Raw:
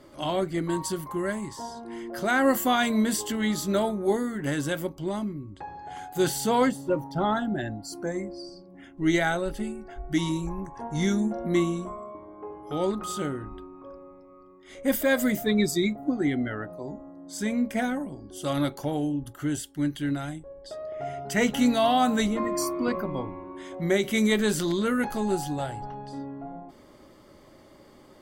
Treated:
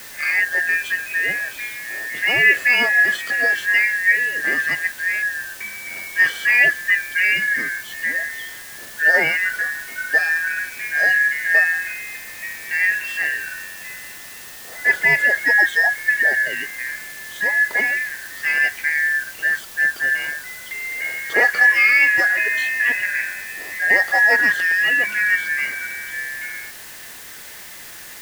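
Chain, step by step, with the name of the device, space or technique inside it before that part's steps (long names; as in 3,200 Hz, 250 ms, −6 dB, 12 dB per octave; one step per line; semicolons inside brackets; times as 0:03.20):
split-band scrambled radio (band-splitting scrambler in four parts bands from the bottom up 2143; band-pass filter 330–2,900 Hz; white noise bed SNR 18 dB)
level +8.5 dB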